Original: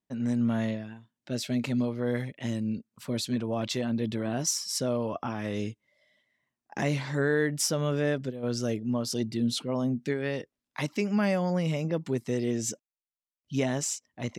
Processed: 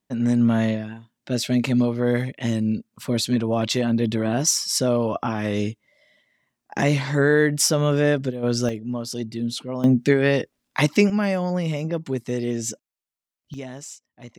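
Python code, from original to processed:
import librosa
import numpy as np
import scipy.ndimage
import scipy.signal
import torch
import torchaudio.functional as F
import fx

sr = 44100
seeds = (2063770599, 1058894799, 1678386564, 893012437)

y = fx.gain(x, sr, db=fx.steps((0.0, 8.0), (8.69, 1.0), (9.84, 12.0), (11.1, 3.5), (13.54, -7.0)))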